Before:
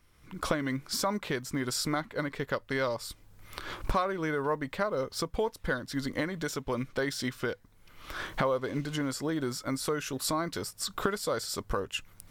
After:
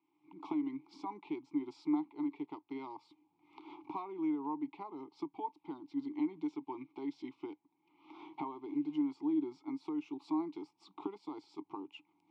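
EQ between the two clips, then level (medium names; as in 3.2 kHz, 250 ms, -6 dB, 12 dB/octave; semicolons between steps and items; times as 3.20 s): vowel filter u; band-pass 210–4000 Hz; static phaser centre 340 Hz, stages 8; +5.5 dB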